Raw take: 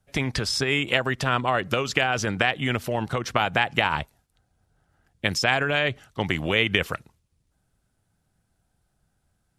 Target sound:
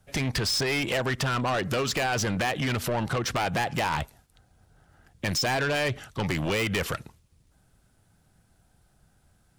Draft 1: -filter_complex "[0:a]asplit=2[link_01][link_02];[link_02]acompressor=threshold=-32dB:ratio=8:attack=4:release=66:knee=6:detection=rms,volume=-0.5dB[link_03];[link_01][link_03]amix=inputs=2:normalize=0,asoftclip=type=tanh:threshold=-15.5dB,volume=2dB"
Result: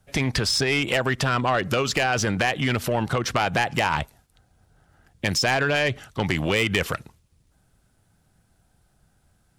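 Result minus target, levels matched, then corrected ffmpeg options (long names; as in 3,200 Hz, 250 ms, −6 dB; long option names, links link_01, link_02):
soft clipping: distortion −6 dB
-filter_complex "[0:a]asplit=2[link_01][link_02];[link_02]acompressor=threshold=-32dB:ratio=8:attack=4:release=66:knee=6:detection=rms,volume=-0.5dB[link_03];[link_01][link_03]amix=inputs=2:normalize=0,asoftclip=type=tanh:threshold=-24.5dB,volume=2dB"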